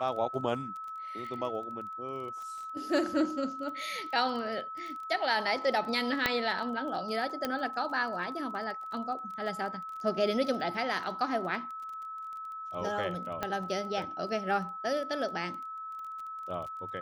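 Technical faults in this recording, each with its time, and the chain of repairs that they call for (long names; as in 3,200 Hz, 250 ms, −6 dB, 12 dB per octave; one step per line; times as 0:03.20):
surface crackle 20 per second −39 dBFS
whistle 1,300 Hz −38 dBFS
0:06.26: click −11 dBFS
0:07.45: click −16 dBFS
0:13.43: click −17 dBFS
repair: click removal
notch filter 1,300 Hz, Q 30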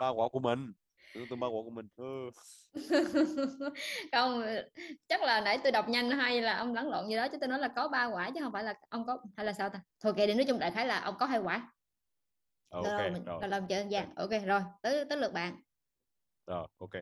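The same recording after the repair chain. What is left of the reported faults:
0:13.43: click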